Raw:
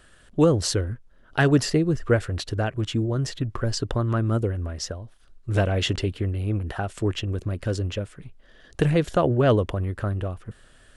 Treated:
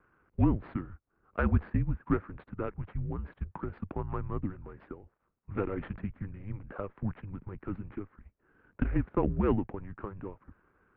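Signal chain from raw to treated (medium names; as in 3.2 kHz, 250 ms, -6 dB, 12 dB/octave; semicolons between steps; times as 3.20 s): median filter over 15 samples; mistuned SSB -200 Hz 150–2600 Hz; Chebyshev shaper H 3 -26 dB, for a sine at -6.5 dBFS; trim -5.5 dB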